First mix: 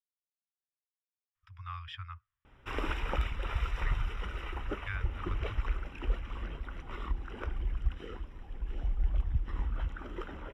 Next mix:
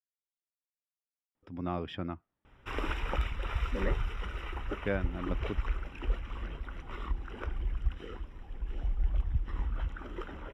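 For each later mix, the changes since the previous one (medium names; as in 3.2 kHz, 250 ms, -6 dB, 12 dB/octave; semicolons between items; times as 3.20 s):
speech: remove Chebyshev band-stop 110–1100 Hz, order 4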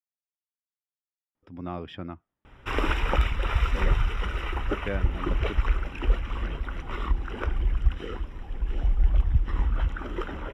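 background +8.5 dB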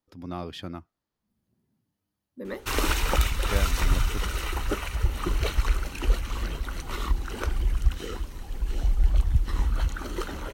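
speech: entry -1.35 s; master: remove Savitzky-Golay filter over 25 samples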